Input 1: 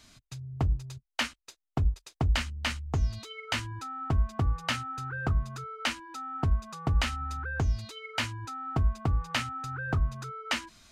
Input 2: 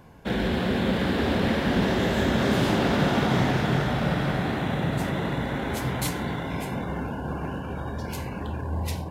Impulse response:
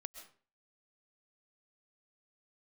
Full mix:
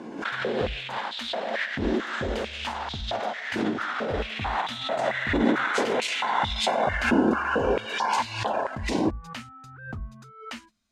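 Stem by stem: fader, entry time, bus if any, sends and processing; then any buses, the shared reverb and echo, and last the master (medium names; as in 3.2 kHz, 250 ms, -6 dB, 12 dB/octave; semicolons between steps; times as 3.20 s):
-9.5 dB, 0.00 s, no send, gate -43 dBFS, range -12 dB
+0.5 dB, 0.00 s, send -7 dB, low-pass 7.8 kHz 24 dB/octave; compressor with a negative ratio -31 dBFS, ratio -1; step-sequenced high-pass 4.5 Hz 320–3700 Hz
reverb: on, RT60 0.40 s, pre-delay 90 ms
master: peaking EQ 220 Hz +11 dB 0.33 oct; swell ahead of each attack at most 78 dB/s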